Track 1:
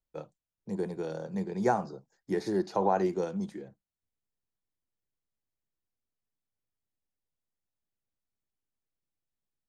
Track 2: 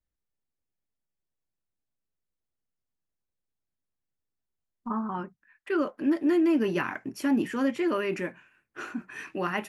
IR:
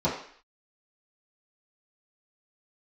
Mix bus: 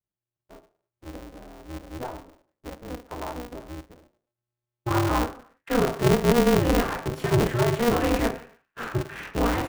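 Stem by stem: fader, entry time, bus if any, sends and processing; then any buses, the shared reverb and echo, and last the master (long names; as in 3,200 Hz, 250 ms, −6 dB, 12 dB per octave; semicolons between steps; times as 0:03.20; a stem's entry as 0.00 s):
−9.0 dB, 0.35 s, send −19.5 dB, low-pass filter 1,500 Hz 24 dB per octave
+1.5 dB, 0.00 s, send −10.5 dB, noise gate −51 dBFS, range −16 dB; downward compressor 4 to 1, threshold −25 dBFS, peak gain reduction 5 dB; slew-rate limiting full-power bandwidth 41 Hz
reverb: on, RT60 0.55 s, pre-delay 3 ms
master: ring modulator with a square carrier 120 Hz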